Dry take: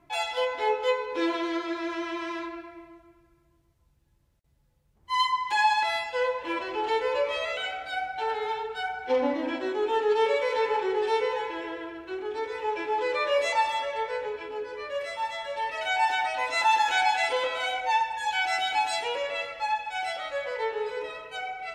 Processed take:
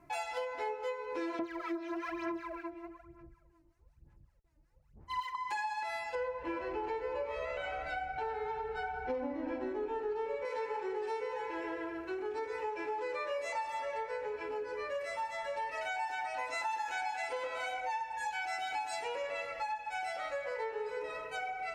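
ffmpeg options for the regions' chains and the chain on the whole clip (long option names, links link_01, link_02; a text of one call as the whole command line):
ffmpeg -i in.wav -filter_complex "[0:a]asettb=1/sr,asplit=3[link_01][link_02][link_03];[link_01]atrim=end=1.394[link_04];[link_02]atrim=start=1.39:end=5.35,asetpts=PTS-STARTPTS,afade=type=in:duration=0.004:curve=qsin,afade=type=out:start_time=3.956:duration=0.004:curve=qsin,aemphasis=mode=reproduction:type=50fm,acrossover=split=840[link_05][link_06];[link_05]aeval=exprs='val(0)*(1-0.7/2+0.7/2*cos(2*PI*5.3*n/s))':channel_layout=same[link_07];[link_06]aeval=exprs='val(0)*(1-0.7/2-0.7/2*cos(2*PI*5.3*n/s))':channel_layout=same[link_08];[link_07][link_08]amix=inputs=2:normalize=0,aphaser=in_gain=1:out_gain=1:delay=3.3:decay=0.74:speed=1.1:type=sinusoidal[link_09];[link_03]atrim=start=5.346[link_10];[link_04][link_09]acrossfade=duration=0.004:curve1=hsin:curve2=qsin[link_11];[link_11][link_10]acrossfade=duration=0.004:curve1=qsin:curve2=hsin,asettb=1/sr,asplit=3[link_12][link_13][link_14];[link_12]atrim=end=6.154[link_15];[link_13]atrim=start=6.15:end=10.45,asetpts=PTS-STARTPTS,afade=type=in:duration=0.004:curve=qsin,afade=type=out:start_time=4.296:duration=0.004:curve=qsin,aemphasis=mode=reproduction:type=bsi,aecho=1:1:374:0.299,atrim=end_sample=189630[link_16];[link_14]atrim=start=10.446[link_17];[link_15][link_16]acrossfade=duration=0.004:curve1=hsin:curve2=qsin[link_18];[link_18][link_17]acrossfade=duration=0.004:curve1=qsin:curve2=hsin,equalizer=frequency=3400:width_type=o:width=0.44:gain=-11.5,acompressor=threshold=-35dB:ratio=6" out.wav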